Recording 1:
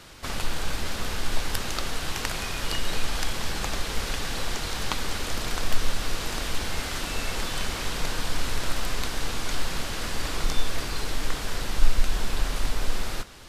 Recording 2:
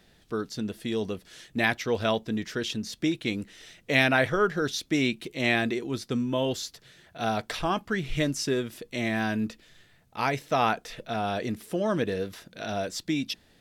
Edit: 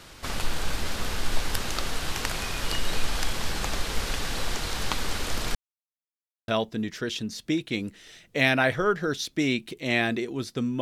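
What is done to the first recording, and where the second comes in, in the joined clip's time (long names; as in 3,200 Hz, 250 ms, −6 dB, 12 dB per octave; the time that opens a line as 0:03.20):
recording 1
0:05.55–0:06.48: silence
0:06.48: continue with recording 2 from 0:02.02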